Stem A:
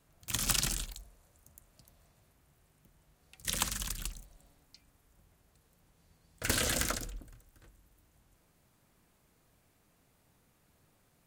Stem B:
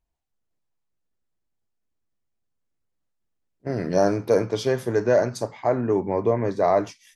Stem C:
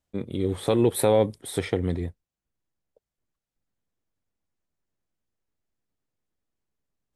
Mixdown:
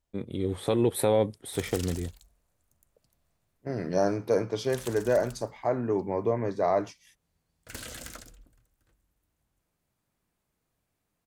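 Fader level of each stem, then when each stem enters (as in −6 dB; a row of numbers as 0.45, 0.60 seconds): −10.5, −5.5, −3.5 decibels; 1.25, 0.00, 0.00 seconds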